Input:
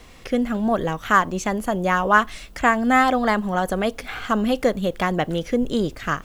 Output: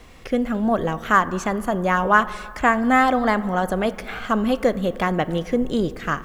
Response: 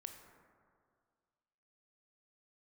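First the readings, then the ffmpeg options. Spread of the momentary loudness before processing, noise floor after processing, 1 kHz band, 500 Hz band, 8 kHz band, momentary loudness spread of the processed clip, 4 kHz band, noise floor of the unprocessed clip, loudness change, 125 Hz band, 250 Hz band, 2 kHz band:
8 LU, -39 dBFS, +0.5 dB, +0.5 dB, -3.0 dB, 8 LU, -2.0 dB, -43 dBFS, +0.5 dB, +0.5 dB, +0.5 dB, 0.0 dB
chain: -filter_complex "[0:a]asplit=2[a][b];[1:a]atrim=start_sample=2205,lowpass=3.2k[c];[b][c]afir=irnorm=-1:irlink=0,volume=-2dB[d];[a][d]amix=inputs=2:normalize=0,volume=-2.5dB"

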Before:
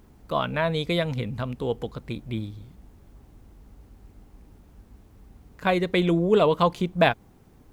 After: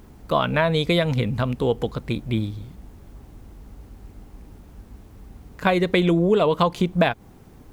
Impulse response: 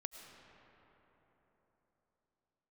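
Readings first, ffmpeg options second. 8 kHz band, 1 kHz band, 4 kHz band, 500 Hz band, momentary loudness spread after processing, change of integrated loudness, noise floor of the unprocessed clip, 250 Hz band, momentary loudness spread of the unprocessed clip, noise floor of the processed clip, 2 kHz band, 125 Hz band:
n/a, +2.0 dB, +3.5 dB, +2.5 dB, 9 LU, +3.0 dB, -54 dBFS, +4.0 dB, 13 LU, -48 dBFS, +3.0 dB, +5.0 dB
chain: -af "acompressor=threshold=-22dB:ratio=6,volume=7dB"

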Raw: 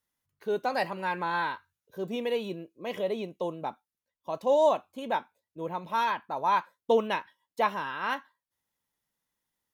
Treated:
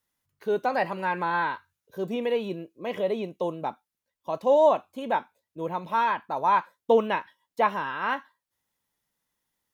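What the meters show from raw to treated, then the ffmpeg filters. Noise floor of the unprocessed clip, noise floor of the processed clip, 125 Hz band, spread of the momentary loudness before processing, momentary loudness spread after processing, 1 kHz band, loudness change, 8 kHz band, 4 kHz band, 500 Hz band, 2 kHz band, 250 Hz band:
under -85 dBFS, under -85 dBFS, +3.5 dB, 13 LU, 13 LU, +3.5 dB, +3.5 dB, n/a, -1.0 dB, +3.5 dB, +3.0 dB, +3.5 dB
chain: -filter_complex "[0:a]acrossover=split=2900[a][b];[b]acompressor=threshold=-54dB:ratio=4:attack=1:release=60[c];[a][c]amix=inputs=2:normalize=0,volume=3.5dB"

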